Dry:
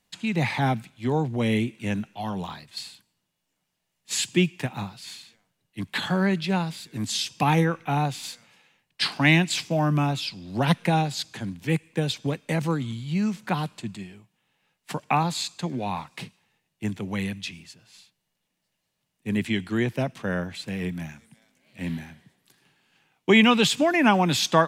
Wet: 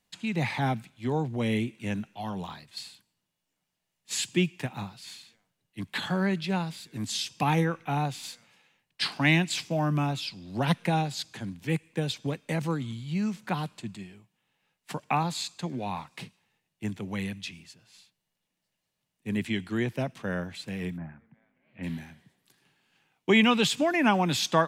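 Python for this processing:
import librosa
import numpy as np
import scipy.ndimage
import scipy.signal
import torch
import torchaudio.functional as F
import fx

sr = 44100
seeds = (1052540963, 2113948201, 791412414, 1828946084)

y = fx.lowpass(x, sr, hz=fx.line((20.96, 1500.0), (21.82, 2700.0)), slope=24, at=(20.96, 21.82), fade=0.02)
y = y * 10.0 ** (-4.0 / 20.0)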